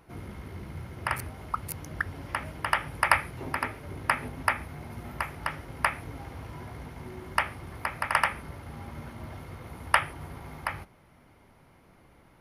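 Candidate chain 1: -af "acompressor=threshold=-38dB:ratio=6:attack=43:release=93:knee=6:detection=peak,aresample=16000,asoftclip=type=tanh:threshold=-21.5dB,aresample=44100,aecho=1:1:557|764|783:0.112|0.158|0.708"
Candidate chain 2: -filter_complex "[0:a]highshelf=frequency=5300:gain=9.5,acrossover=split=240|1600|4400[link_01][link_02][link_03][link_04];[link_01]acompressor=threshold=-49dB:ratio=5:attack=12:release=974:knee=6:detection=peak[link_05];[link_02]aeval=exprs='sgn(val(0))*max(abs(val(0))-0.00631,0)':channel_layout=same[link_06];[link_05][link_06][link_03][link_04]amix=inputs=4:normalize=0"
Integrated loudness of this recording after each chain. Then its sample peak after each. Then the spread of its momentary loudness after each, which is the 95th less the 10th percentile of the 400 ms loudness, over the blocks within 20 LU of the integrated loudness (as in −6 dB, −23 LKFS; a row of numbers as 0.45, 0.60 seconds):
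−38.5, −30.0 LKFS; −19.5, −2.0 dBFS; 7, 23 LU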